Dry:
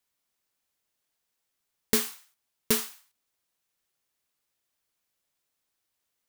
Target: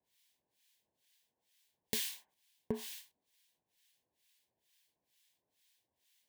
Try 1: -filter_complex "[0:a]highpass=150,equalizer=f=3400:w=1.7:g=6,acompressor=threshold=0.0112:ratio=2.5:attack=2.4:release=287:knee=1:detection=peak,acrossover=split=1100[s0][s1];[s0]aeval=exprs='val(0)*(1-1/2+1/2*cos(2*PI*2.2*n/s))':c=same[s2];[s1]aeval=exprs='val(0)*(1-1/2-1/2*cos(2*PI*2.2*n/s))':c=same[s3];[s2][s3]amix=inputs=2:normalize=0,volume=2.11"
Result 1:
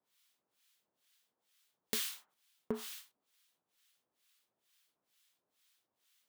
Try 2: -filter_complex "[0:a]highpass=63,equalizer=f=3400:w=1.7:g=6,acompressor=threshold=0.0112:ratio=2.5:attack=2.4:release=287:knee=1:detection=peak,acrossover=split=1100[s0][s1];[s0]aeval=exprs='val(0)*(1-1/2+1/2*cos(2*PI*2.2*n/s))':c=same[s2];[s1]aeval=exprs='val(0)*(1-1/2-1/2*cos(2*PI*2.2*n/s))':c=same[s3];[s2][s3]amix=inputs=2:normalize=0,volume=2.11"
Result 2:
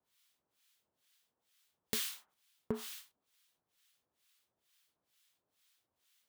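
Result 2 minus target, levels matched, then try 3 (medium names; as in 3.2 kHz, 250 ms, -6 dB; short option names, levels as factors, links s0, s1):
1 kHz band +2.5 dB
-filter_complex "[0:a]highpass=63,equalizer=f=3400:w=1.7:g=6,acompressor=threshold=0.0112:ratio=2.5:attack=2.4:release=287:knee=1:detection=peak,asuperstop=centerf=1300:order=4:qfactor=2.6,acrossover=split=1100[s0][s1];[s0]aeval=exprs='val(0)*(1-1/2+1/2*cos(2*PI*2.2*n/s))':c=same[s2];[s1]aeval=exprs='val(0)*(1-1/2-1/2*cos(2*PI*2.2*n/s))':c=same[s3];[s2][s3]amix=inputs=2:normalize=0,volume=2.11"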